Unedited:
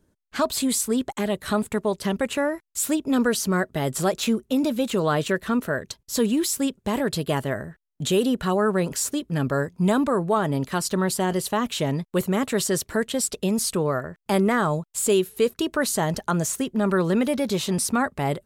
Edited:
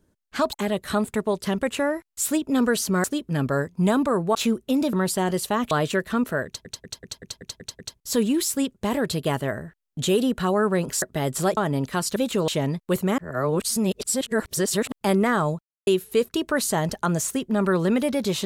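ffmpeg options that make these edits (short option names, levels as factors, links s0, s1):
-filter_complex "[0:a]asplit=21[s0][s1][s2][s3][s4][s5][s6][s7][s8][s9][s10][s11][s12][s13][s14][s15][s16][s17][s18][s19][s20];[s0]atrim=end=0.532[s21];[s1]atrim=start=1.108:end=3.622[s22];[s2]atrim=start=9.048:end=10.362[s23];[s3]atrim=start=4.168:end=4.752[s24];[s4]atrim=start=10.948:end=11.732[s25];[s5]atrim=start=5.068:end=6.012[s26];[s6]atrim=start=5.818:end=6.012[s27];[s7]atrim=start=5.818:end=6.012[s28];[s8]atrim=start=5.818:end=6.012[s29];[s9]atrim=start=5.818:end=6.012[s30];[s10]atrim=start=5.818:end=6.012[s31];[s11]atrim=start=5.818:end=6.012[s32];[s12]atrim=start=5.818:end=9.052[s33];[s13]atrim=start=3.618:end=4.172[s34];[s14]atrim=start=10.358:end=10.952[s35];[s15]atrim=start=4.748:end=5.072[s36];[s16]atrim=start=11.728:end=12.432[s37];[s17]atrim=start=12.428:end=14.172,asetpts=PTS-STARTPTS,areverse[s38];[s18]atrim=start=14.168:end=14.86,asetpts=PTS-STARTPTS,afade=t=out:st=0.688:d=0.004:c=hsin[s39];[s19]atrim=start=14.86:end=15.12,asetpts=PTS-STARTPTS,volume=0[s40];[s20]atrim=start=15.12,asetpts=PTS-STARTPTS,afade=t=in:d=0.004:c=hsin[s41];[s21][s22]acrossfade=d=0.004:c1=hsin:c2=hsin[s42];[s42][s23]acrossfade=d=0.004:c1=hsin:c2=hsin[s43];[s43][s24]acrossfade=d=0.004:c1=hsin:c2=hsin[s44];[s44][s25]acrossfade=d=0.004:c1=hsin:c2=hsin[s45];[s45][s26]acrossfade=d=0.004:c1=hsin:c2=hsin[s46];[s46][s27]acrossfade=d=0.004:c1=hsin:c2=hsin[s47];[s47][s28]acrossfade=d=0.004:c1=hsin:c2=hsin[s48];[s48][s29]acrossfade=d=0.004:c1=hsin:c2=hsin[s49];[s49][s30]acrossfade=d=0.004:c1=hsin:c2=hsin[s50];[s50][s31]acrossfade=d=0.004:c1=hsin:c2=hsin[s51];[s51][s32]acrossfade=d=0.004:c1=hsin:c2=hsin[s52];[s52][s33]acrossfade=d=0.004:c1=hsin:c2=hsin[s53];[s53][s34]acrossfade=d=0.004:c1=hsin:c2=hsin[s54];[s54][s35]acrossfade=d=0.004:c1=hsin:c2=hsin[s55];[s55][s36]acrossfade=d=0.004:c1=hsin:c2=hsin[s56];[s56][s37]acrossfade=d=0.004:c1=hsin:c2=hsin[s57];[s57][s38]acrossfade=d=0.004:c1=hsin:c2=hsin[s58];[s39][s40][s41]concat=n=3:v=0:a=1[s59];[s58][s59]acrossfade=d=0.004:c1=hsin:c2=hsin"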